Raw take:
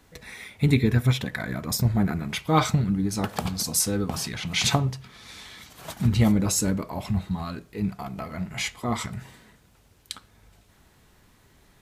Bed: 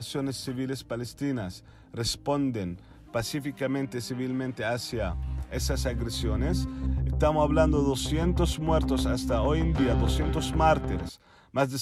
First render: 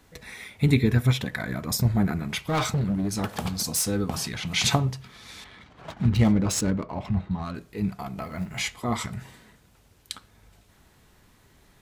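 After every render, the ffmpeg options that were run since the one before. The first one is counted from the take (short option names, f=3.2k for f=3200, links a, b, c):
-filter_complex "[0:a]asettb=1/sr,asplit=3[a][b][c];[a]atrim=end=2.394[d];[b]atrim=start=2.39:end=3.89,asetpts=PTS-STARTPTS,afade=t=in:d=0.004:c=qsin,afade=t=out:st=1.496:d=0.004:c=qsin,asoftclip=type=hard:threshold=-21dB[e];[c]atrim=start=3.886[f];[d][e]acrossfade=d=0.004:c1=hsin:c2=qsin[g];[g][f]acrossfade=d=0.004:c1=qsin:c2=hsin,asettb=1/sr,asplit=3[h][i][j];[h]atrim=end=5.444[k];[i]atrim=start=5.44:end=7.55,asetpts=PTS-STARTPTS,afade=t=in:d=0.004:c=qsin,afade=t=out:st=2.106:d=0.004:c=qsin,adynamicsmooth=sensitivity=6.5:basefreq=1.9k[l];[j]atrim=start=7.546[m];[k][l]acrossfade=d=0.004:c1=hsin:c2=qsin[n];[n][m]acrossfade=d=0.004:c1=qsin:c2=hsin,asettb=1/sr,asplit=3[o][p][q];[o]atrim=end=8.214[r];[p]atrim=start=8.21:end=8.61,asetpts=PTS-STARTPTS,afade=t=in:d=0.004:c=qsin,afade=t=out:st=0.396:d=0.004:c=qsin,acrusher=bits=8:mode=log:mix=0:aa=0.000001[s];[q]atrim=start=8.606[t];[r][s]acrossfade=d=0.004:c1=hsin:c2=qsin[u];[u][t]acrossfade=d=0.004:c1=qsin:c2=hsin"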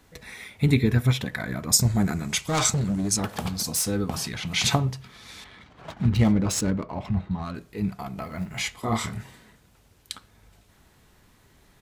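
-filter_complex "[0:a]asettb=1/sr,asplit=3[a][b][c];[a]atrim=end=1.734[d];[b]atrim=start=1.73:end=3.17,asetpts=PTS-STARTPTS,afade=t=in:d=0.004:c=qsin,afade=t=out:st=1.436:d=0.004:c=qsin,equalizer=f=7.3k:t=o:w=1.1:g=14[e];[c]atrim=start=3.166[f];[d][e]acrossfade=d=0.004:c1=hsin:c2=qsin[g];[g][f]acrossfade=d=0.004:c1=qsin:c2=hsin,asplit=3[h][i][j];[h]afade=t=out:st=8.82:d=0.02[k];[i]asplit=2[l][m];[m]adelay=27,volume=-3dB[n];[l][n]amix=inputs=2:normalize=0,afade=t=in:st=8.82:d=0.02,afade=t=out:st=9.22:d=0.02[o];[j]afade=t=in:st=9.22:d=0.02[p];[k][o][p]amix=inputs=3:normalize=0"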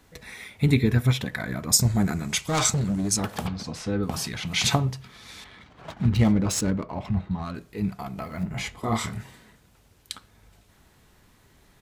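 -filter_complex "[0:a]asettb=1/sr,asplit=3[a][b][c];[a]atrim=end=3.474[d];[b]atrim=start=3.47:end=4.03,asetpts=PTS-STARTPTS,afade=t=in:d=0.004:c=qsin,afade=t=out:st=0.556:d=0.004:c=qsin,lowpass=3k[e];[c]atrim=start=4.026[f];[d][e]acrossfade=d=0.004:c1=hsin:c2=qsin[g];[g][f]acrossfade=d=0.004:c1=qsin:c2=hsin,asettb=1/sr,asplit=3[h][i][j];[h]atrim=end=8.434[k];[i]atrim=start=8.43:end=8.84,asetpts=PTS-STARTPTS,afade=t=in:d=0.004:c=qsin,afade=t=out:st=0.406:d=0.004:c=qsin,tiltshelf=f=1.2k:g=6[l];[j]atrim=start=8.836[m];[k][l]acrossfade=d=0.004:c1=hsin:c2=qsin[n];[n][m]acrossfade=d=0.004:c1=qsin:c2=hsin"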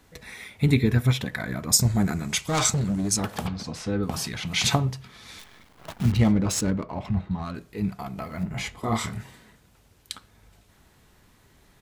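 -filter_complex "[0:a]asettb=1/sr,asplit=3[a][b][c];[a]atrim=end=5.394[d];[b]atrim=start=5.39:end=6.12,asetpts=PTS-STARTPTS,afade=t=in:d=0.004:c=qsin,afade=t=out:st=0.726:d=0.004:c=qsin,acrusher=bits=7:dc=4:mix=0:aa=0.000001[e];[c]atrim=start=6.116[f];[d][e]acrossfade=d=0.004:c1=hsin:c2=qsin[g];[g][f]acrossfade=d=0.004:c1=qsin:c2=hsin"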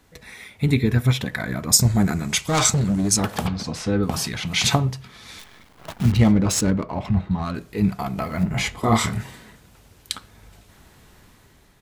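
-af "dynaudnorm=f=660:g=3:m=8dB"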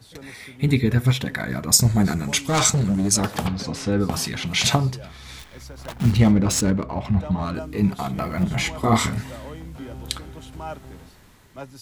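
-filter_complex "[1:a]volume=-12dB[a];[0:a][a]amix=inputs=2:normalize=0"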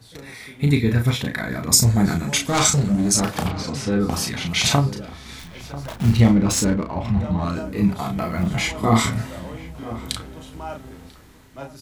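-filter_complex "[0:a]asplit=2[a][b];[b]adelay=35,volume=-5dB[c];[a][c]amix=inputs=2:normalize=0,asplit=2[d][e];[e]adelay=991.3,volume=-15dB,highshelf=f=4k:g=-22.3[f];[d][f]amix=inputs=2:normalize=0"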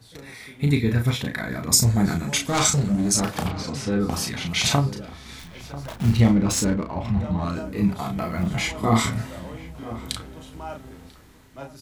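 -af "volume=-2.5dB"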